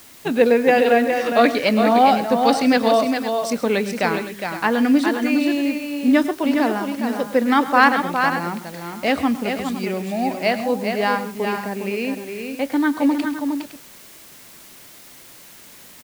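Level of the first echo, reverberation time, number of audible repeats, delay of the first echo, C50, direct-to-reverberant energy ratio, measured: −17.0 dB, no reverb audible, 3, 106 ms, no reverb audible, no reverb audible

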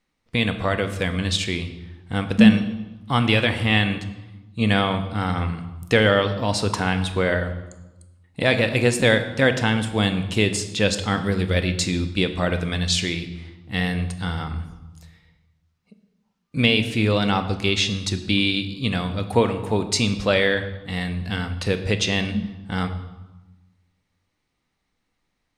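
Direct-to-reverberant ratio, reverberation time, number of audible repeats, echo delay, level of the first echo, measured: 8.0 dB, 1.1 s, no echo audible, no echo audible, no echo audible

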